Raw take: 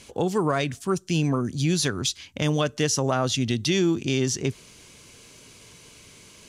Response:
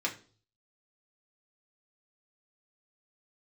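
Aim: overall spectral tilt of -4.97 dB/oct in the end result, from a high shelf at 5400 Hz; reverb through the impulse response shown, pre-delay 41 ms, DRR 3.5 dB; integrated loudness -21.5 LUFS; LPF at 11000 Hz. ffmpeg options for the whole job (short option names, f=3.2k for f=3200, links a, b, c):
-filter_complex "[0:a]lowpass=11k,highshelf=f=5.4k:g=-4.5,asplit=2[a][b];[1:a]atrim=start_sample=2205,adelay=41[c];[b][c]afir=irnorm=-1:irlink=0,volume=-9.5dB[d];[a][d]amix=inputs=2:normalize=0,volume=2.5dB"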